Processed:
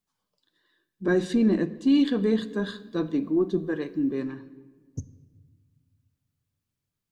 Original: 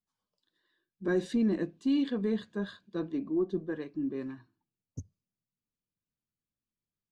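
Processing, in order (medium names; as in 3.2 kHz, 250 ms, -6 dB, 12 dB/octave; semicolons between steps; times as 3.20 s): 1.94–4.22 s: treble shelf 5.1 kHz +8 dB; reverberation RT60 1.5 s, pre-delay 7 ms, DRR 14 dB; trim +6.5 dB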